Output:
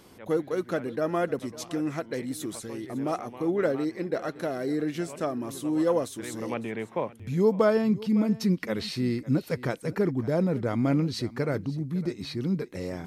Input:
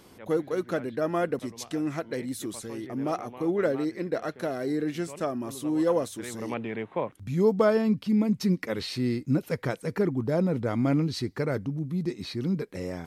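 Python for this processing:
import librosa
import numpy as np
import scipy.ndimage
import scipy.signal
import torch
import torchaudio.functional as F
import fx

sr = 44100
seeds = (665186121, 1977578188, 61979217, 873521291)

y = x + 10.0 ** (-18.5 / 20.0) * np.pad(x, (int(556 * sr / 1000.0), 0))[:len(x)]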